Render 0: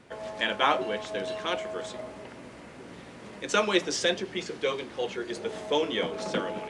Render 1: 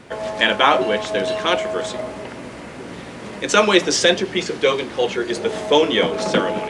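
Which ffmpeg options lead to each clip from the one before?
ffmpeg -i in.wav -af "alimiter=level_in=12.5dB:limit=-1dB:release=50:level=0:latency=1,volume=-1dB" out.wav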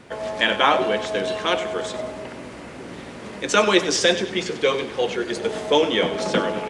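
ffmpeg -i in.wav -af "aecho=1:1:96|192|288|384|480:0.211|0.0993|0.0467|0.0219|0.0103,volume=-3dB" out.wav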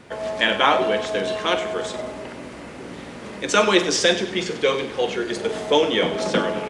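ffmpeg -i in.wav -filter_complex "[0:a]asplit=2[link_01][link_02];[link_02]adelay=45,volume=-12dB[link_03];[link_01][link_03]amix=inputs=2:normalize=0" out.wav

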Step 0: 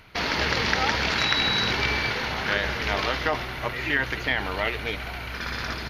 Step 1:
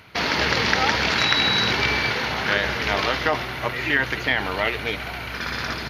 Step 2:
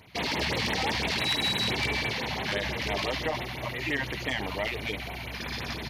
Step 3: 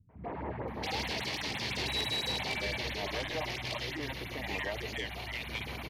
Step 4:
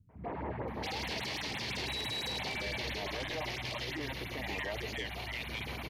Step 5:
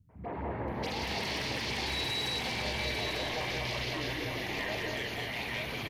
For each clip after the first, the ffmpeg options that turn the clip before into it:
ffmpeg -i in.wav -af "highpass=77,volume=3.5dB" out.wav
ffmpeg -i in.wav -af "equalizer=frequency=1400:width=2.8:gain=-12,asoftclip=type=tanh:threshold=-17dB,afftfilt=real='re*(1-between(b*sr/1024,350*pow(6200/350,0.5+0.5*sin(2*PI*5.9*pts/sr))/1.41,350*pow(6200/350,0.5+0.5*sin(2*PI*5.9*pts/sr))*1.41))':imag='im*(1-between(b*sr/1024,350*pow(6200/350,0.5+0.5*sin(2*PI*5.9*pts/sr))/1.41,350*pow(6200/350,0.5+0.5*sin(2*PI*5.9*pts/sr))*1.41))':win_size=1024:overlap=0.75,volume=-3dB" out.wav
ffmpeg -i in.wav -filter_complex "[0:a]alimiter=limit=-22.5dB:level=0:latency=1,acrossover=split=200|1400[link_01][link_02][link_03];[link_02]adelay=90[link_04];[link_03]adelay=680[link_05];[link_01][link_04][link_05]amix=inputs=3:normalize=0,volume=-3.5dB" out.wav
ffmpeg -i in.wav -af "alimiter=level_in=4.5dB:limit=-24dB:level=0:latency=1:release=12,volume=-4.5dB" out.wav
ffmpeg -i in.wav -af "aecho=1:1:43|194|232|899:0.376|0.631|0.562|0.631" out.wav

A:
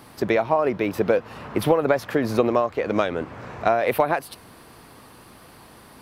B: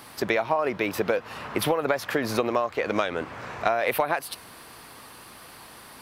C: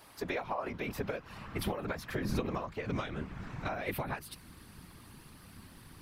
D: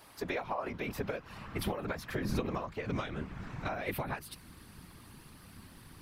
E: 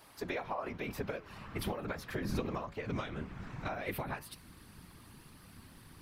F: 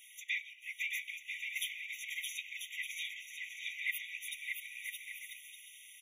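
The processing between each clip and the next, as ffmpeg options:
ffmpeg -i in.wav -af "tiltshelf=frequency=680:gain=-5,acompressor=threshold=-21dB:ratio=2.5" out.wav
ffmpeg -i in.wav -af "asubboost=boost=10.5:cutoff=180,afftfilt=real='hypot(re,im)*cos(2*PI*random(0))':imag='hypot(re,im)*sin(2*PI*random(1))':win_size=512:overlap=0.75,volume=-5dB" out.wav
ffmpeg -i in.wav -af anull out.wav
ffmpeg -i in.wav -af "flanger=delay=6.2:depth=5.4:regen=-88:speed=1.1:shape=sinusoidal,volume=2.5dB" out.wav
ffmpeg -i in.wav -af "aecho=1:1:620|992|1215|1349|1429:0.631|0.398|0.251|0.158|0.1,afftfilt=real='re*eq(mod(floor(b*sr/1024/1900),2),1)':imag='im*eq(mod(floor(b*sr/1024/1900),2),1)':win_size=1024:overlap=0.75,volume=8dB" out.wav

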